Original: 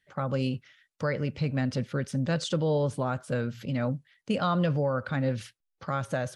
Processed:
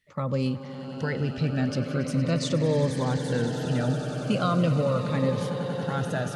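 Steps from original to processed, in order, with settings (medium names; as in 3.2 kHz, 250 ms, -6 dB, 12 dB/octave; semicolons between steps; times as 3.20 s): echo with a slow build-up 93 ms, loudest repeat 8, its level -14 dB; Shepard-style phaser falling 0.41 Hz; trim +2.5 dB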